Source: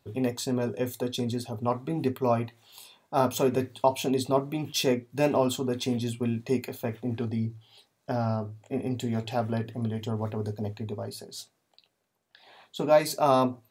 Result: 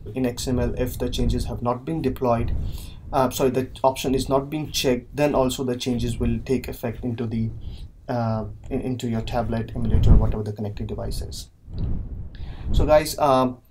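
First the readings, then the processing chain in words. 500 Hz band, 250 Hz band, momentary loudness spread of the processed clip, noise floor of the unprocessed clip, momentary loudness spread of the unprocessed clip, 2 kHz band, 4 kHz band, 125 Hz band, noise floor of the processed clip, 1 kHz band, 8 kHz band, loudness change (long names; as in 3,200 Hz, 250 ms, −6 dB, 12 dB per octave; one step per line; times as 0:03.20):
+4.0 dB, +4.5 dB, 13 LU, −75 dBFS, 11 LU, +4.0 dB, +4.0 dB, +7.5 dB, −43 dBFS, +4.0 dB, +4.0 dB, +4.5 dB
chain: wind on the microphone 81 Hz −31 dBFS
level +4 dB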